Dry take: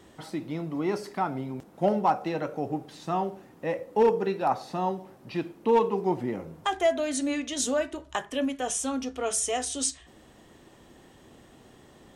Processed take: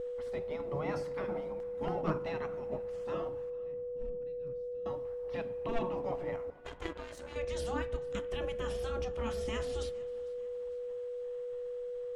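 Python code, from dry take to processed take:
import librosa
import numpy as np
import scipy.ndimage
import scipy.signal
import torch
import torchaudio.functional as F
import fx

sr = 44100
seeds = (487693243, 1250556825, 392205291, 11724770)

p1 = fx.spec_gate(x, sr, threshold_db=-15, keep='weak')
p2 = fx.tone_stack(p1, sr, knobs='10-0-1', at=(3.5, 4.86))
p3 = p2 + 10.0 ** (-38.0 / 20.0) * np.sin(2.0 * np.pi * 490.0 * np.arange(len(p2)) / sr)
p4 = fx.level_steps(p3, sr, step_db=10)
p5 = p3 + (p4 * librosa.db_to_amplitude(-2.5))
p6 = fx.tilt_eq(p5, sr, slope=-4.0)
p7 = fx.power_curve(p6, sr, exponent=2.0, at=(6.5, 7.36))
p8 = fx.echo_feedback(p7, sr, ms=450, feedback_pct=47, wet_db=-23.5)
p9 = fx.rev_spring(p8, sr, rt60_s=2.1, pass_ms=(35,), chirp_ms=75, drr_db=18.0)
y = p9 * librosa.db_to_amplitude(-4.0)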